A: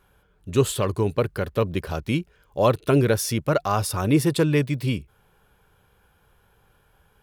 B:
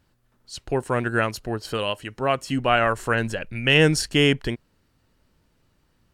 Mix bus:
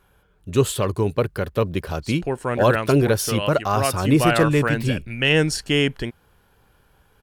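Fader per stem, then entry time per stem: +1.5, −1.0 decibels; 0.00, 1.55 seconds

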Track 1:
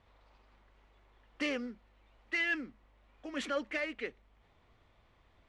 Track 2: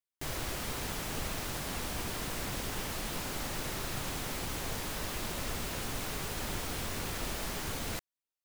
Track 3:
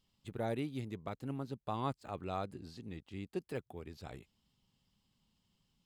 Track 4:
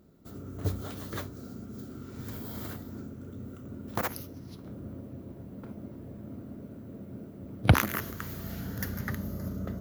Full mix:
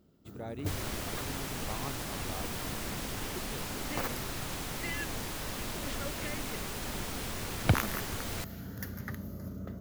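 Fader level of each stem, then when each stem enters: −7.5, −1.0, −5.0, −5.5 decibels; 2.50, 0.45, 0.00, 0.00 seconds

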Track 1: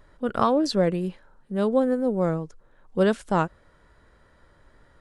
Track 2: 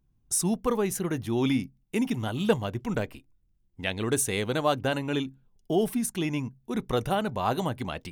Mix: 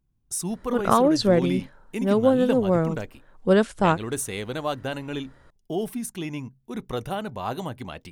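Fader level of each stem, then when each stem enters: +2.5, −3.0 decibels; 0.50, 0.00 seconds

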